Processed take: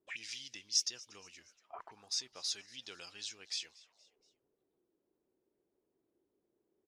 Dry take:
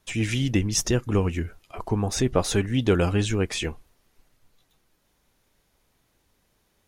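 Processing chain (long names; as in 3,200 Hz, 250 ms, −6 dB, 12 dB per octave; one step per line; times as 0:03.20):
envelope filter 350–4,900 Hz, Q 4.6, up, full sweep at −26.5 dBFS
echo with shifted repeats 236 ms, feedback 49%, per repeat +120 Hz, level −22 dB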